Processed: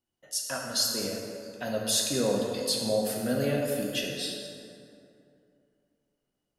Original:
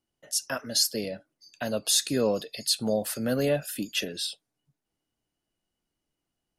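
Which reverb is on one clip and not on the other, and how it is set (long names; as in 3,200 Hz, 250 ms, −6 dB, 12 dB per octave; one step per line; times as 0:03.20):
dense smooth reverb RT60 2.7 s, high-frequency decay 0.5×, DRR −1.5 dB
level −4.5 dB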